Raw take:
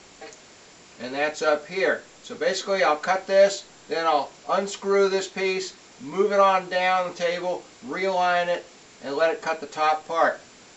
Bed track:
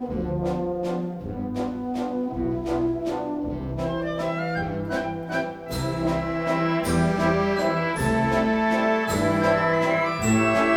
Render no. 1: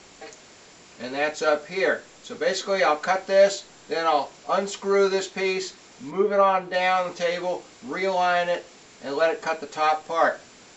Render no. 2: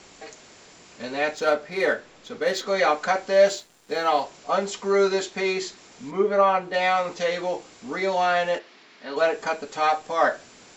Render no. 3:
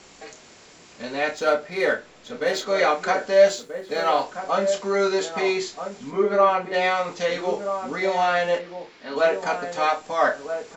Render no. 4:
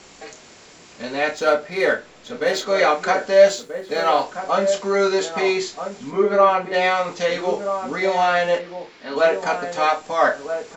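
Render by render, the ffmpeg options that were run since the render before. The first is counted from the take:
-filter_complex "[0:a]asettb=1/sr,asplit=3[a][b][c];[a]atrim=end=6.114[d];[b]atrim=start=6.11:end=6.74,asetpts=PTS-STARTPTS,afade=t=in:d=0.004:c=qsin,afade=t=out:st=0.626:d=0.004:c=qsin,lowpass=f=1.8k:p=1[e];[c]atrim=start=6.736[f];[d][e]acrossfade=d=0.004:c1=hsin:c2=qsin[g];[g][f]acrossfade=d=0.004:c1=qsin:c2=hsin"
-filter_complex "[0:a]asettb=1/sr,asplit=3[a][b][c];[a]atrim=end=1.344[d];[b]atrim=start=1.34:end=2.67,asetpts=PTS-STARTPTS,afade=t=in:d=0.004:c=qsin,afade=t=out:st=1.326:d=0.004:c=qsin,adynamicsmooth=sensitivity=4.5:basefreq=5.3k[e];[c]atrim=start=2.666[f];[d][e]acrossfade=d=0.004:c1=hsin:c2=qsin[g];[g][f]acrossfade=d=0.004:c1=qsin:c2=hsin,asettb=1/sr,asplit=3[h][i][j];[h]atrim=end=3.334[k];[i]atrim=start=3.33:end=4.22,asetpts=PTS-STARTPTS,afade=t=in:d=0.004:c=qsin,afade=t=out:st=0.886:d=0.004:c=qsin,aeval=exprs='sgn(val(0))*max(abs(val(0))-0.00282,0)':c=same[l];[j]atrim=start=4.216[m];[k][l]acrossfade=d=0.004:c1=hsin:c2=qsin[n];[n][m]acrossfade=d=0.004:c1=qsin:c2=hsin,asplit=3[o][p][q];[o]afade=t=out:st=8.58:d=0.02[r];[p]highpass=280,equalizer=f=490:t=q:w=4:g=-8,equalizer=f=770:t=q:w=4:g=-4,equalizer=f=1.9k:t=q:w=4:g=3,lowpass=f=4.8k:w=0.5412,lowpass=f=4.8k:w=1.3066,afade=t=in:st=8.58:d=0.02,afade=t=out:st=9.15:d=0.02[s];[q]afade=t=in:st=9.15:d=0.02[t];[r][s][t]amix=inputs=3:normalize=0"
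-filter_complex "[0:a]asplit=2[a][b];[b]adelay=29,volume=-8.5dB[c];[a][c]amix=inputs=2:normalize=0,asplit=2[d][e];[e]adelay=1283,volume=-8dB,highshelf=f=4k:g=-28.9[f];[d][f]amix=inputs=2:normalize=0"
-af "volume=3dB"

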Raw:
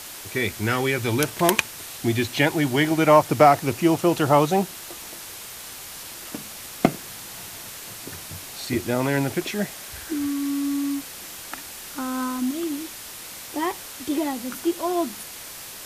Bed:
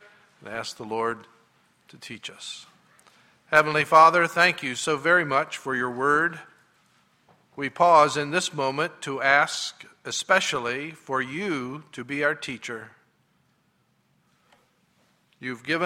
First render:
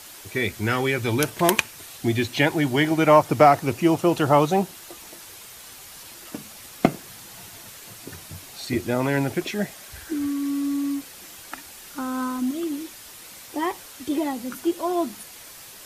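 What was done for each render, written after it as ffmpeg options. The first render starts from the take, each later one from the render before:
-af "afftdn=nr=6:nf=-39"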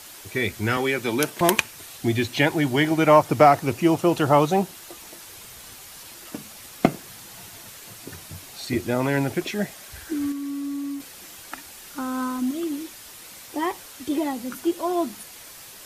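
-filter_complex "[0:a]asettb=1/sr,asplit=3[a][b][c];[a]atrim=end=0.774[d];[b]atrim=start=0.77:end=1.41,asetpts=PTS-STARTPTS,afade=t=in:d=0.004:c=qsin,afade=t=out:st=0.636:d=0.004:c=qsin,highpass=f=160:w=0.5412,highpass=f=160:w=1.3066[e];[c]atrim=start=1.406[f];[d][e]acrossfade=d=0.004:c1=hsin:c2=qsin[g];[g][f]acrossfade=d=0.004:c1=qsin:c2=hsin,asettb=1/sr,asplit=3[h][i][j];[h]atrim=end=5.354[k];[i]atrim=start=5.35:end=5.76,asetpts=PTS-STARTPTS,afade=t=in:d=0.004:c=qsin,afade=t=out:st=0.406:d=0.004:c=qsin,lowshelf=f=220:g=7[l];[j]atrim=start=5.756[m];[k][l]acrossfade=d=0.004:c1=hsin:c2=qsin[n];[n][m]acrossfade=d=0.004:c1=qsin:c2=hsin,asplit=3[o][p][q];[o]atrim=end=10.322[r];[p]atrim=start=10.318:end=11.002,asetpts=PTS-STARTPTS,volume=-4.5dB[s];[q]atrim=start=10.998[t];[r][s]acrossfade=d=0.004:c1=hsin:c2=hsin[u];[u][t]acrossfade=d=0.004:c1=hsin:c2=hsin"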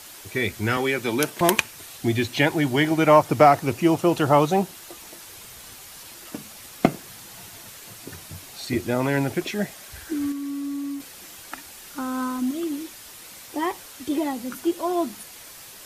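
-af anull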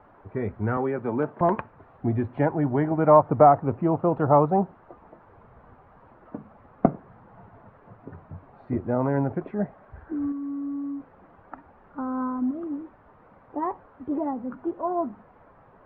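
-af "lowpass=f=1.2k:w=0.5412,lowpass=f=1.2k:w=1.3066,equalizer=f=340:t=o:w=0.28:g=-6.5"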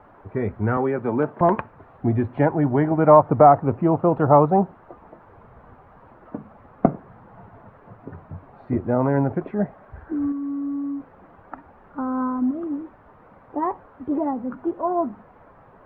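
-af "volume=4dB,alimiter=limit=-2dB:level=0:latency=1"

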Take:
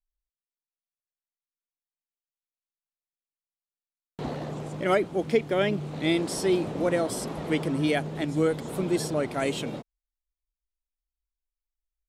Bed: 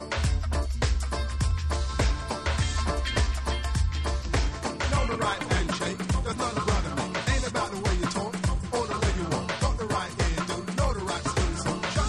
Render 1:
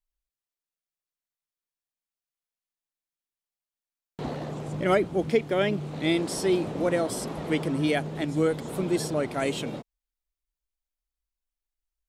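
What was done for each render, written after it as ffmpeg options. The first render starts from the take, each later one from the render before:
-filter_complex "[0:a]asettb=1/sr,asplit=3[a][b][c];[a]atrim=end=4.684[d];[b]atrim=start=4.68:end=5.3,asetpts=PTS-STARTPTS,afade=t=in:d=0.004:c=qsin,afade=t=out:st=0.616:d=0.004:c=qsin,lowshelf=f=160:g=8[e];[c]atrim=start=5.296[f];[d][e]acrossfade=d=0.004:c1=hsin:c2=qsin[g];[g][f]acrossfade=d=0.004:c1=qsin:c2=hsin"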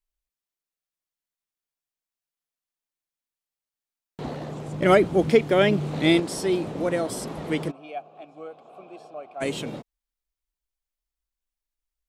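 -filter_complex "[0:a]asettb=1/sr,asplit=3[a][b][c];[a]atrim=end=4.824[d];[b]atrim=start=4.82:end=6.2,asetpts=PTS-STARTPTS,afade=t=in:d=0.004:c=qsin,afade=t=out:st=1.376:d=0.004:c=qsin,acontrast=48[e];[c]atrim=start=6.196[f];[d][e]acrossfade=d=0.004:c1=hsin:c2=qsin[g];[g][f]acrossfade=d=0.004:c1=qsin:c2=hsin,asplit=3[h][i][j];[h]afade=t=out:st=7.7:d=0.02[k];[i]asplit=3[l][m][n];[l]bandpass=f=730:t=q:w=8,volume=0dB[o];[m]bandpass=f=1.09k:t=q:w=8,volume=-6dB[p];[n]bandpass=f=2.44k:t=q:w=8,volume=-9dB[q];[o][p][q]amix=inputs=3:normalize=0,afade=t=in:st=7.7:d=0.02,afade=t=out:st=9.4:d=0.02[r];[j]afade=t=in:st=9.4:d=0.02[s];[k][r][s]amix=inputs=3:normalize=0"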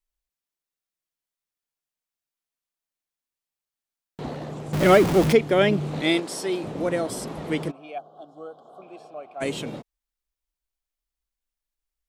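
-filter_complex "[0:a]asettb=1/sr,asplit=3[a][b][c];[a]atrim=end=4.734[d];[b]atrim=start=4.73:end=5.33,asetpts=PTS-STARTPTS,afade=t=in:d=0.004:c=qsin,afade=t=out:st=0.596:d=0.004:c=qsin,aeval=exprs='val(0)+0.5*0.0891*sgn(val(0))':c=same[e];[c]atrim=start=5.326[f];[d][e]acrossfade=d=0.004:c1=hsin:c2=qsin[g];[g][f]acrossfade=d=0.004:c1=qsin:c2=hsin,asettb=1/sr,asplit=3[h][i][j];[h]atrim=end=6.014[k];[i]atrim=start=6.01:end=6.64,asetpts=PTS-STARTPTS,afade=t=in:d=0.004:c=qsin,afade=t=out:st=0.626:d=0.004:c=qsin,highpass=f=380:p=1[l];[j]atrim=start=6.636[m];[k][l]acrossfade=d=0.004:c1=hsin:c2=qsin[n];[n][m]acrossfade=d=0.004:c1=qsin:c2=hsin,asettb=1/sr,asplit=3[o][p][q];[o]atrim=end=7.984[r];[p]atrim=start=7.98:end=8.82,asetpts=PTS-STARTPTS,afade=t=in:d=0.004:c=qsin,afade=t=out:st=0.836:d=0.004:c=qsin,asuperstop=centerf=2200:order=12:qfactor=1.5[s];[q]atrim=start=8.816[t];[r][s]acrossfade=d=0.004:c1=hsin:c2=qsin[u];[u][t]acrossfade=d=0.004:c1=qsin:c2=hsin"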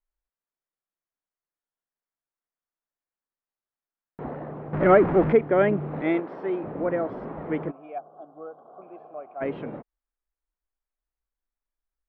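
-af "lowpass=f=1.8k:w=0.5412,lowpass=f=1.8k:w=1.3066,equalizer=f=110:w=0.63:g=-4.5"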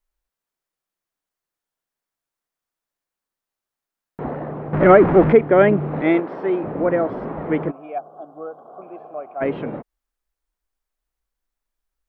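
-af "volume=7dB,alimiter=limit=-2dB:level=0:latency=1"

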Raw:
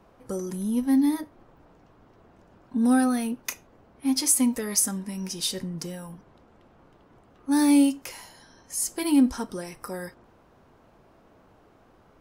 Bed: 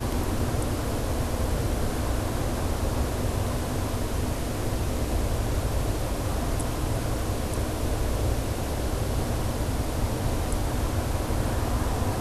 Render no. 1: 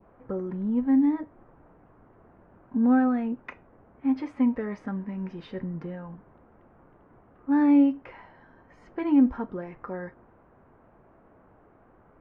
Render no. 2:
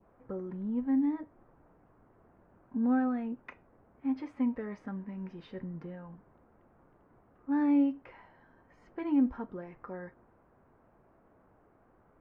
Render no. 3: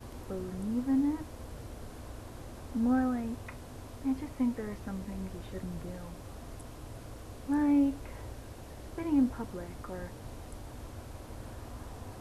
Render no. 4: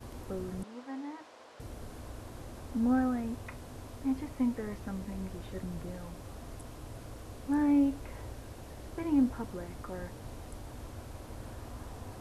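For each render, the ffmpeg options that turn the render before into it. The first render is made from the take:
-af "lowpass=f=2k:w=0.5412,lowpass=f=2k:w=1.3066,adynamicequalizer=threshold=0.00708:dfrequency=1500:dqfactor=1:tfrequency=1500:tqfactor=1:attack=5:release=100:ratio=0.375:range=2:mode=cutabove:tftype=bell"
-af "volume=-7dB"
-filter_complex "[1:a]volume=-18dB[a];[0:a][a]amix=inputs=2:normalize=0"
-filter_complex "[0:a]asettb=1/sr,asplit=3[a][b][c];[a]atrim=end=0.634[d];[b]atrim=start=0.63:end=1.6,asetpts=PTS-STARTPTS,afade=t=in:d=0.004:c=qsin,afade=t=out:st=0.966:d=0.004:c=qsin,highpass=590,lowpass=5.3k[e];[c]atrim=start=1.596[f];[d][e]acrossfade=d=0.004:c1=hsin:c2=qsin[g];[g][f]acrossfade=d=0.004:c1=qsin:c2=hsin"

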